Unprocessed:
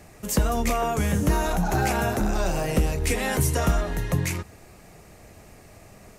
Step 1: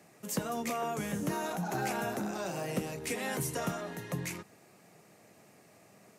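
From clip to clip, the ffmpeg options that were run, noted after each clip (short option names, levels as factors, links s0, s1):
-af "highpass=f=140:w=0.5412,highpass=f=140:w=1.3066,volume=0.355"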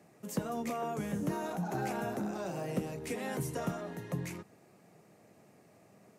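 -af "tiltshelf=f=1100:g=4,volume=0.668"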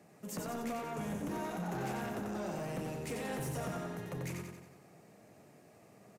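-af "asoftclip=type=tanh:threshold=0.0168,aecho=1:1:91|182|273|364|455|546|637:0.596|0.316|0.167|0.0887|0.047|0.0249|0.0132"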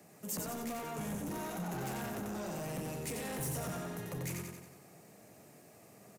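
-filter_complex "[0:a]acrossover=split=160[s0][s1];[s1]asoftclip=type=tanh:threshold=0.0133[s2];[s0][s2]amix=inputs=2:normalize=0,crystalizer=i=1.5:c=0,volume=1.12"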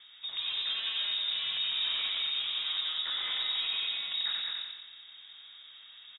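-af "lowpass=f=3300:t=q:w=0.5098,lowpass=f=3300:t=q:w=0.6013,lowpass=f=3300:t=q:w=0.9,lowpass=f=3300:t=q:w=2.563,afreqshift=-3900,aecho=1:1:206:0.631,volume=1.88"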